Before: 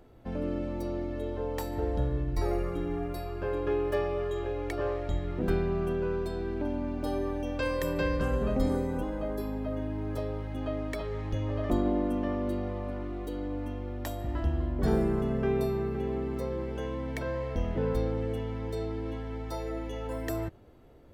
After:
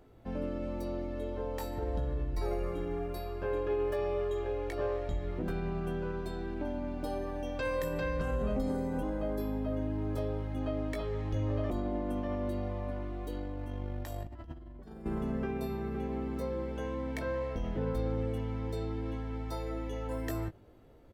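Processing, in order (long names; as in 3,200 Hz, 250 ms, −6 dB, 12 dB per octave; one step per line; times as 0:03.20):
brickwall limiter −22.5 dBFS, peak gain reduction 7.5 dB
double-tracking delay 19 ms −7.5 dB
0:13.30–0:15.06: compressor whose output falls as the input rises −36 dBFS, ratio −0.5
level −3 dB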